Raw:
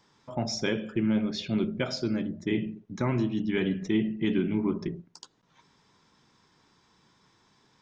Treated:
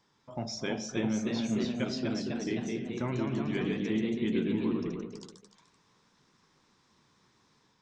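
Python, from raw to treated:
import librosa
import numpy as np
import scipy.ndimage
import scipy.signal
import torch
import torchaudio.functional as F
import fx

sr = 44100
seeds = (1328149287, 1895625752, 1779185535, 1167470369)

p1 = fx.echo_pitch(x, sr, ms=349, semitones=1, count=3, db_per_echo=-3.0)
p2 = p1 + fx.echo_single(p1, sr, ms=298, db=-12.5, dry=0)
y = F.gain(torch.from_numpy(p2), -6.0).numpy()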